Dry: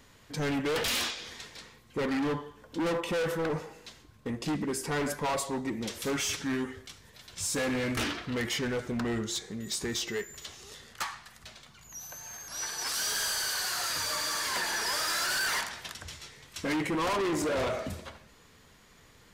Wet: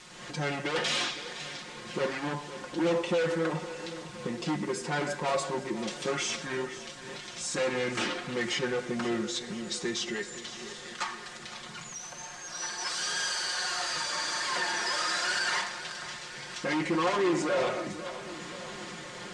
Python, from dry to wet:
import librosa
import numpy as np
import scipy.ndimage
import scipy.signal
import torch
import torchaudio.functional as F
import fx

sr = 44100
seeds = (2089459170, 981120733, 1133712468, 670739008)

y = fx.recorder_agc(x, sr, target_db=-33.5, rise_db_per_s=60.0, max_gain_db=30)
y = scipy.signal.sosfilt(scipy.signal.bessel(2, 180.0, 'highpass', norm='mag', fs=sr, output='sos'), y)
y = fx.quant_dither(y, sr, seeds[0], bits=8, dither='triangular')
y = scipy.signal.sosfilt(scipy.signal.butter(6, 8800.0, 'lowpass', fs=sr, output='sos'), y)
y = fx.high_shelf(y, sr, hz=5800.0, db=-7.0)
y = y + 0.82 * np.pad(y, (int(5.6 * sr / 1000.0), 0))[:len(y)]
y = fx.echo_feedback(y, sr, ms=513, feedback_pct=58, wet_db=-14)